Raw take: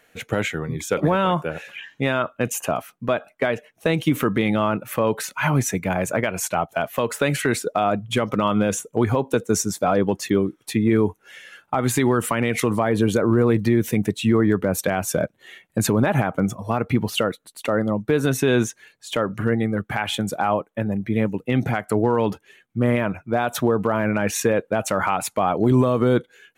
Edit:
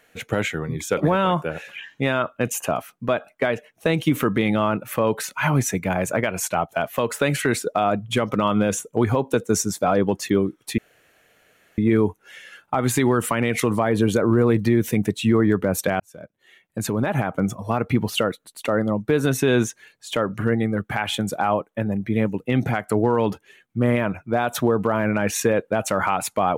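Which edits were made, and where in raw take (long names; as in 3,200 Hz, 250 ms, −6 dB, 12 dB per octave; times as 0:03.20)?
0:10.78: splice in room tone 1.00 s
0:15.00–0:16.58: fade in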